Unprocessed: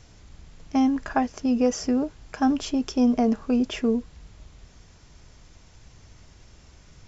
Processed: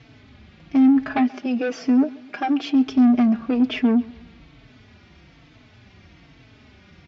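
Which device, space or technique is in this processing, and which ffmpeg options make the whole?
barber-pole flanger into a guitar amplifier: -filter_complex "[0:a]asettb=1/sr,asplit=3[a][b][c];[a]atrim=end=1.174[d];[b]atrim=start=1.17:end=2.87,asetpts=PTS-STARTPTS,afade=t=in:d=0.004:c=qsin,afade=t=out:st=1.696:d=0.004:c=qsin,highpass=250[e];[c]atrim=start=2.866[f];[d][e]acrossfade=d=0.004:c1=hsin:c2=qsin[g];[g][f]acrossfade=d=0.004:c1=qsin:c2=hsin,asplit=2[h][i];[i]adelay=4,afreqshift=-1.1[j];[h][j]amix=inputs=2:normalize=1,asoftclip=type=tanh:threshold=-24.5dB,highpass=100,equalizer=f=260:t=q:w=4:g=6,equalizer=f=500:t=q:w=4:g=-5,equalizer=f=970:t=q:w=4:g=-5,equalizer=f=2.3k:t=q:w=4:g=4,lowpass=f=4k:w=0.5412,lowpass=f=4k:w=1.3066,aecho=1:1:133|266|399:0.0794|0.035|0.0154,volume=8.5dB"

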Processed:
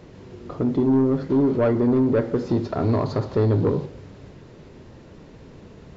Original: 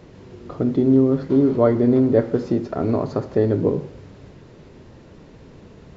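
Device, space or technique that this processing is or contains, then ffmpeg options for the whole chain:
saturation between pre-emphasis and de-emphasis: -filter_complex "[0:a]asettb=1/sr,asplit=3[a][b][c];[a]atrim=end=2.494[d];[b]atrim=start=2.49:end=3.86,asetpts=PTS-STARTPTS,afade=t=in:d=0.004:c=qsin,afade=t=out:st=1.366:d=0.004:c=qsin,equalizer=f=100:t=o:w=0.67:g=7,equalizer=f=1k:t=o:w=0.67:g=5,equalizer=f=4k:t=o:w=0.67:g=8[e];[c]atrim=start=3.856[f];[d][e]acrossfade=d=0.004:c1=hsin:c2=qsin[g];[g][f]acrossfade=d=0.004:c1=qsin:c2=hsin,highshelf=f=2.2k:g=8.5,asoftclip=type=tanh:threshold=-13dB,highshelf=f=2.2k:g=-8.5"

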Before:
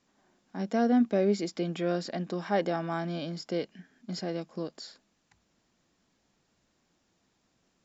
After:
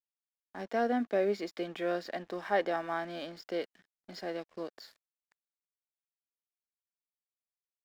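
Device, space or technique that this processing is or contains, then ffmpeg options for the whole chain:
pocket radio on a weak battery: -af "highpass=390,lowpass=4k,aeval=exprs='sgn(val(0))*max(abs(val(0))-0.0015,0)':c=same,equalizer=f=1.8k:t=o:w=0.22:g=5"

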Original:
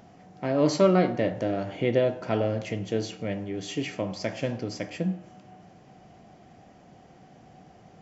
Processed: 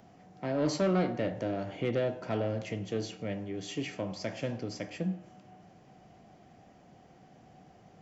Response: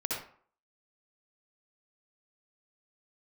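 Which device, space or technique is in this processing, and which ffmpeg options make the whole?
one-band saturation: -filter_complex "[0:a]acrossover=split=240|4900[a][b][c];[b]asoftclip=type=tanh:threshold=-20.5dB[d];[a][d][c]amix=inputs=3:normalize=0,volume=-4.5dB"

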